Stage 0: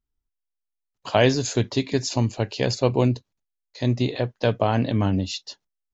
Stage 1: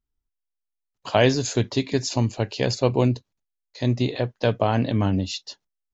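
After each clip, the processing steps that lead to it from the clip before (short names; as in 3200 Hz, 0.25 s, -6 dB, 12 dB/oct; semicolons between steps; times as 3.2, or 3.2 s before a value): nothing audible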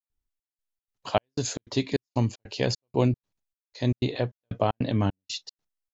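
step gate ".xxx..xx" 153 bpm -60 dB; gain -2.5 dB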